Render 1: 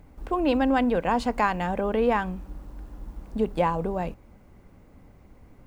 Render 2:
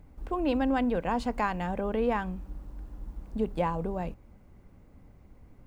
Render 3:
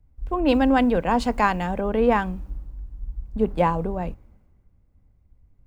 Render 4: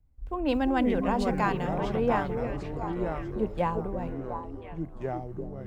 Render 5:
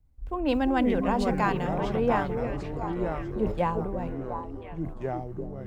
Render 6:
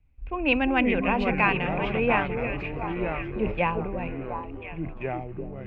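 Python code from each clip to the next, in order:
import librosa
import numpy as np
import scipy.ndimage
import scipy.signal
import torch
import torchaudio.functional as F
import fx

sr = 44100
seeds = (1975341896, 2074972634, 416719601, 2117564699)

y1 = fx.low_shelf(x, sr, hz=220.0, db=5.0)
y1 = y1 * librosa.db_to_amplitude(-6.0)
y2 = fx.band_widen(y1, sr, depth_pct=70)
y2 = y2 * librosa.db_to_amplitude(7.5)
y3 = fx.echo_pitch(y2, sr, ms=235, semitones=-5, count=3, db_per_echo=-6.0)
y3 = fx.echo_stepped(y3, sr, ms=347, hz=350.0, octaves=1.4, feedback_pct=70, wet_db=-4)
y3 = y3 * librosa.db_to_amplitude(-7.5)
y4 = fx.sustainer(y3, sr, db_per_s=92.0)
y4 = y4 * librosa.db_to_amplitude(1.0)
y5 = fx.lowpass_res(y4, sr, hz=2500.0, q=9.5)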